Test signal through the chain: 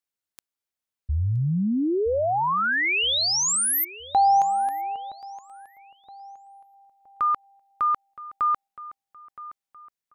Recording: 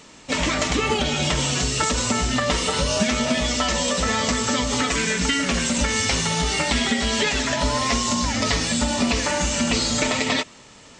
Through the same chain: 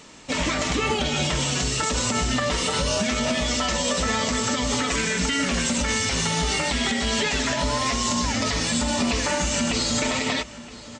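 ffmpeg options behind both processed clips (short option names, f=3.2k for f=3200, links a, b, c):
-filter_complex "[0:a]alimiter=limit=-14dB:level=0:latency=1:release=59,asplit=2[a][b];[b]adelay=969,lowpass=f=3.7k:p=1,volume=-16.5dB,asplit=2[c][d];[d]adelay=969,lowpass=f=3.7k:p=1,volume=0.4,asplit=2[e][f];[f]adelay=969,lowpass=f=3.7k:p=1,volume=0.4[g];[c][e][g]amix=inputs=3:normalize=0[h];[a][h]amix=inputs=2:normalize=0"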